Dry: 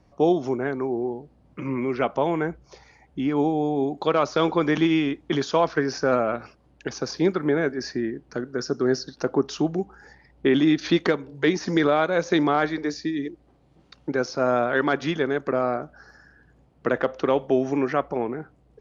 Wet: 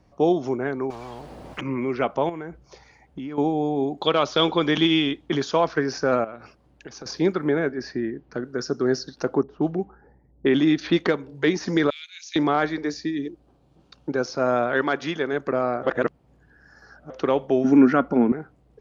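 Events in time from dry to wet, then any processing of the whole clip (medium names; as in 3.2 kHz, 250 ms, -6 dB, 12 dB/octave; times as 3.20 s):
0.90–1.61 s: spectrum-flattening compressor 10:1
2.29–3.38 s: compression, threshold -30 dBFS
4.02–5.26 s: peaking EQ 3.3 kHz +11.5 dB 0.48 oct
6.24–7.06 s: compression 2.5:1, threshold -39 dBFS
7.59–8.43 s: distance through air 120 m
9.43–11.18 s: level-controlled noise filter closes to 410 Hz, open at -16 dBFS
11.90–12.36 s: steep high-pass 2.5 kHz
13.18–14.25 s: peaking EQ 2 kHz -9 dB 0.3 oct
14.82–15.33 s: bass shelf 240 Hz -7 dB
15.83–17.10 s: reverse
17.64–18.32 s: small resonant body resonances 240/1400 Hz, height 16 dB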